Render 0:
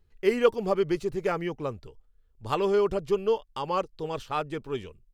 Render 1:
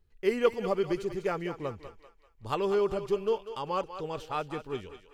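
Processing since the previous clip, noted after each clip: thinning echo 0.195 s, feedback 46%, high-pass 540 Hz, level -9.5 dB; gain -3.5 dB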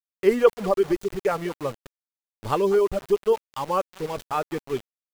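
reverb removal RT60 2 s; dynamic EQ 3600 Hz, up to -7 dB, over -52 dBFS, Q 0.72; sample gate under -42.5 dBFS; gain +8.5 dB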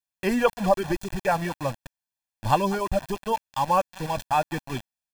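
comb 1.2 ms, depth 84%; gain +1.5 dB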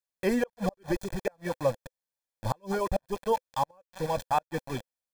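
bell 510 Hz +11.5 dB 0.36 oct; notch 2800 Hz, Q 5.5; flipped gate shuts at -11 dBFS, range -38 dB; gain -3.5 dB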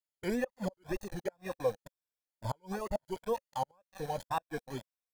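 moving spectral ripple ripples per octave 1.7, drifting +1.7 Hz, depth 10 dB; wow and flutter 130 cents; gain -7.5 dB

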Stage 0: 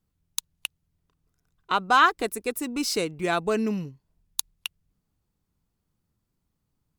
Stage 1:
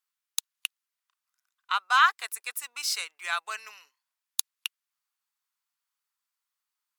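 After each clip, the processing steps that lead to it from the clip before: HPF 1100 Hz 24 dB/oct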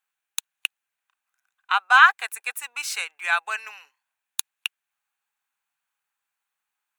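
thirty-one-band EQ 500 Hz +3 dB, 800 Hz +11 dB, 1600 Hz +8 dB, 2500 Hz +7 dB, 5000 Hz -9 dB, 12500 Hz -4 dB; gain +2 dB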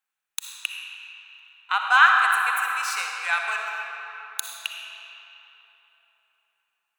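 digital reverb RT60 3.7 s, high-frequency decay 0.65×, pre-delay 20 ms, DRR 0.5 dB; gain -2.5 dB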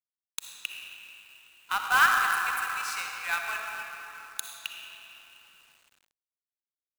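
companded quantiser 4-bit; gain -6 dB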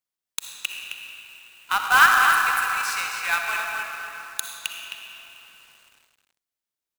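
echo 0.263 s -8 dB; gain +6 dB

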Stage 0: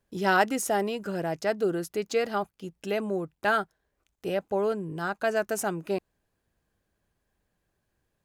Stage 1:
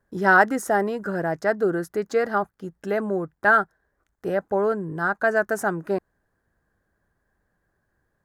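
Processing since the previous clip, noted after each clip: resonant high shelf 2100 Hz -7 dB, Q 3; gain +4 dB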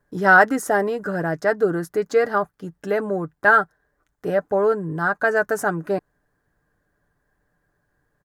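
comb 6.8 ms, depth 40%; gain +2 dB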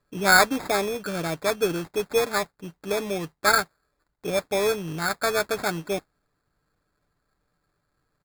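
modulation noise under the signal 18 dB; sample-and-hold 15×; gain -4.5 dB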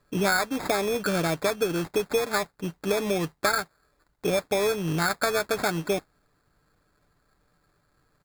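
compressor 8:1, threshold -28 dBFS, peak gain reduction 15.5 dB; gain +6.5 dB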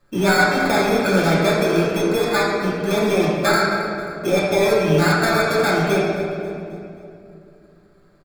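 feedback echo 0.268 s, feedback 50%, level -18 dB; reverb RT60 2.7 s, pre-delay 3 ms, DRR -8 dB

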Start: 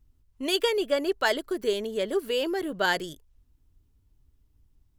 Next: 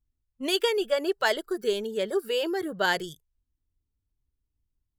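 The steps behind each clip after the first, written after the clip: spectral noise reduction 16 dB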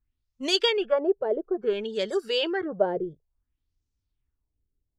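LFO low-pass sine 0.58 Hz 440–6400 Hz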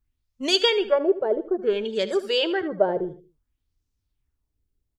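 feedback echo 77 ms, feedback 36%, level -15 dB; gain +3 dB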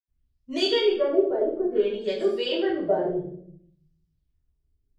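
reverb RT60 0.65 s, pre-delay 77 ms; gain -5.5 dB

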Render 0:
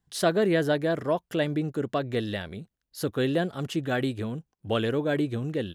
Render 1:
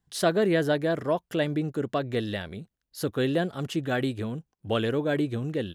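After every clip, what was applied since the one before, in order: nothing audible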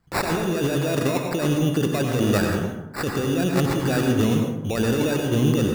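negative-ratio compressor -30 dBFS, ratio -1; sample-and-hold 14×; plate-style reverb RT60 0.97 s, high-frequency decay 0.45×, pre-delay 75 ms, DRR 2 dB; gain +7 dB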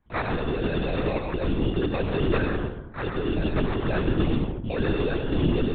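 LPC vocoder at 8 kHz whisper; gain -3 dB

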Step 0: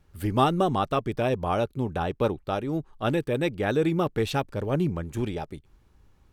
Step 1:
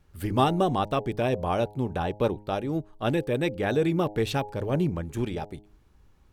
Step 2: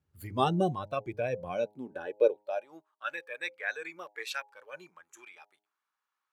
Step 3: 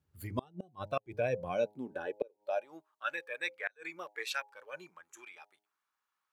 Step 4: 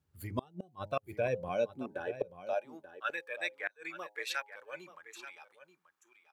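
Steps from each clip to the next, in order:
de-hum 104.1 Hz, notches 9; dynamic EQ 1300 Hz, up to -5 dB, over -46 dBFS, Q 5.3
spectral noise reduction 14 dB; high-pass sweep 98 Hz -> 1200 Hz, 1.18–2.94; gain -3.5 dB
flipped gate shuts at -20 dBFS, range -33 dB
echo 0.883 s -13.5 dB

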